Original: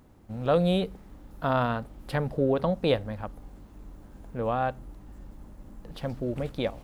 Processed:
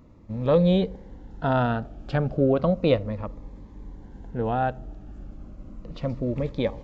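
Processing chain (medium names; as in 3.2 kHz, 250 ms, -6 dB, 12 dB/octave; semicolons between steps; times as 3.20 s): treble shelf 3.8 kHz -10 dB; on a send: band-passed feedback delay 74 ms, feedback 67%, band-pass 510 Hz, level -23.5 dB; on the sum: resampled via 16 kHz; Shepard-style phaser falling 0.33 Hz; trim +5 dB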